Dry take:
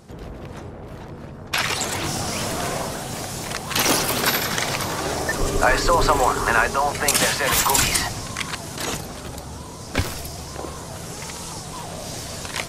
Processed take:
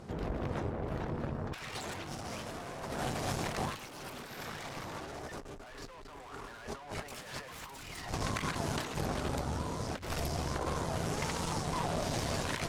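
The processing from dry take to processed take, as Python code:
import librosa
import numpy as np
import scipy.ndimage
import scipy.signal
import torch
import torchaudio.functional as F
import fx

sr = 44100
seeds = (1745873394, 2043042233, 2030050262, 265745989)

y = fx.high_shelf(x, sr, hz=4400.0, db=-12.0)
y = fx.hum_notches(y, sr, base_hz=60, count=3)
y = fx.tube_stage(y, sr, drive_db=27.0, bias=0.75)
y = fx.over_compress(y, sr, threshold_db=-37.0, ratio=-0.5)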